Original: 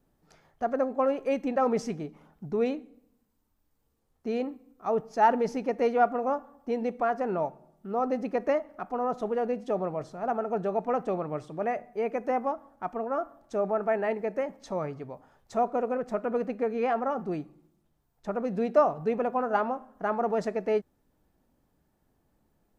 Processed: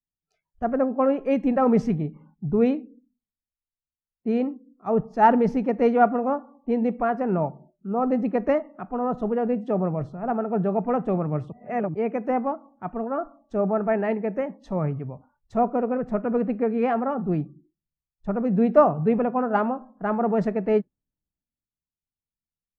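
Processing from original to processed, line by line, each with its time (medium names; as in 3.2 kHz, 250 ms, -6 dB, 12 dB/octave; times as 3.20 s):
11.52–11.94 s: reverse
whole clip: tone controls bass +13 dB, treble -13 dB; spectral noise reduction 25 dB; three bands expanded up and down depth 40%; trim +2.5 dB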